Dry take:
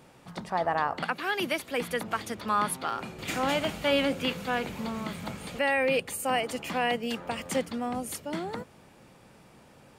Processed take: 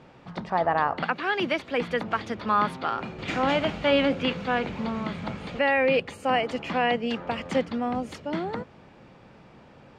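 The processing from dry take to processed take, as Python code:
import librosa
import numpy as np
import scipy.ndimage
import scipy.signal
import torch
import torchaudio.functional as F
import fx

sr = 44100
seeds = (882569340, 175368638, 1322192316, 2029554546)

y = fx.air_absorb(x, sr, metres=170.0)
y = F.gain(torch.from_numpy(y), 4.5).numpy()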